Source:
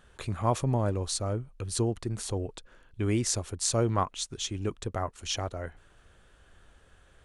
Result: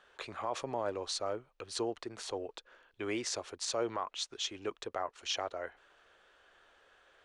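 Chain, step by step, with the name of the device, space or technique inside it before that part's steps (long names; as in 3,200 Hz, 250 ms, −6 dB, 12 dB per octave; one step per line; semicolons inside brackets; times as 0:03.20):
DJ mixer with the lows and highs turned down (three-way crossover with the lows and the highs turned down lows −24 dB, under 370 Hz, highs −20 dB, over 6,000 Hz; brickwall limiter −23.5 dBFS, peak gain reduction 10 dB)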